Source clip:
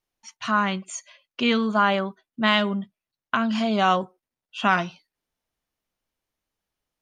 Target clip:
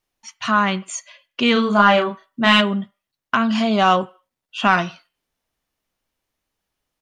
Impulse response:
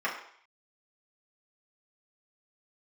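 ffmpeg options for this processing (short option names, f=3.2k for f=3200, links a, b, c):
-filter_complex "[0:a]asoftclip=type=tanh:threshold=-7.5dB,asplit=3[a][b][c];[a]afade=t=out:st=1.55:d=0.02[d];[b]asplit=2[e][f];[f]adelay=34,volume=-2.5dB[g];[e][g]amix=inputs=2:normalize=0,afade=t=in:st=1.55:d=0.02,afade=t=out:st=2.6:d=0.02[h];[c]afade=t=in:st=2.6:d=0.02[i];[d][h][i]amix=inputs=3:normalize=0,asplit=2[j][k];[1:a]atrim=start_sample=2205,asetrate=61740,aresample=44100[l];[k][l]afir=irnorm=-1:irlink=0,volume=-21dB[m];[j][m]amix=inputs=2:normalize=0,volume=5dB"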